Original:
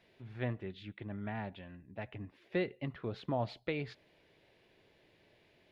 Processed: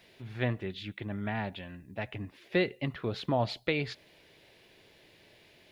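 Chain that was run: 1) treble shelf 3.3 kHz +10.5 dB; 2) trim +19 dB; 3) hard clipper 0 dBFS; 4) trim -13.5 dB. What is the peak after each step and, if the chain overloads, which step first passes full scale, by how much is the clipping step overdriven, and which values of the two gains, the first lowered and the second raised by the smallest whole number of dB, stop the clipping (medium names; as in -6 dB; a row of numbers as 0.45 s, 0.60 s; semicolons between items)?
-21.5 dBFS, -2.5 dBFS, -2.5 dBFS, -16.0 dBFS; nothing clips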